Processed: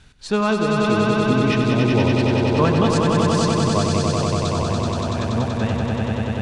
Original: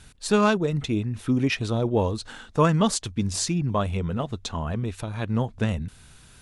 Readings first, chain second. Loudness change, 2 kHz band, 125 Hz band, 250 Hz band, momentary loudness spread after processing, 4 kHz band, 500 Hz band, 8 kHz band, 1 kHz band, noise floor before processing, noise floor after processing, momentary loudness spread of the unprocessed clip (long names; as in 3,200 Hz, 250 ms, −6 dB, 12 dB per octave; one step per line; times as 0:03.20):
+6.0 dB, +6.5 dB, +6.0 dB, +6.5 dB, 5 LU, +6.0 dB, +6.5 dB, +0.5 dB, +6.5 dB, −51 dBFS, −26 dBFS, 10 LU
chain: low-pass filter 5,600 Hz 12 dB per octave
echo that builds up and dies away 95 ms, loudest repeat 5, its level −4 dB